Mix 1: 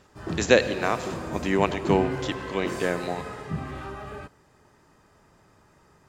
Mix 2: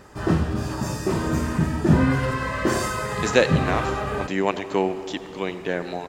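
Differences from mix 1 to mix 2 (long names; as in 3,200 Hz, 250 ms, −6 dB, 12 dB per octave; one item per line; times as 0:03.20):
speech: entry +2.85 s
background +11.0 dB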